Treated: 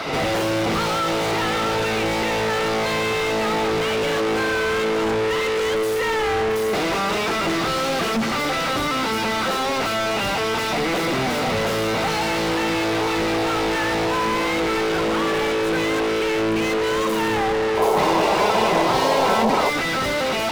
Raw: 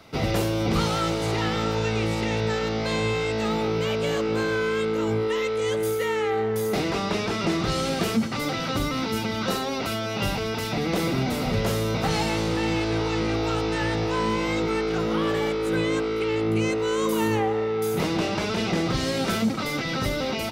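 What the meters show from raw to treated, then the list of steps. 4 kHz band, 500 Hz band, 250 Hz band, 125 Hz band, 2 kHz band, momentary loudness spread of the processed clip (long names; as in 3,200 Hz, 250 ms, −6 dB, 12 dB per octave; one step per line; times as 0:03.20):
+5.5 dB, +4.0 dB, +1.0 dB, −3.5 dB, +7.0 dB, 3 LU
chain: echo ahead of the sound 67 ms −18 dB
mid-hump overdrive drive 39 dB, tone 2,300 Hz, clips at −11 dBFS
sound drawn into the spectrogram noise, 0:17.77–0:19.70, 370–1,100 Hz −17 dBFS
level −3.5 dB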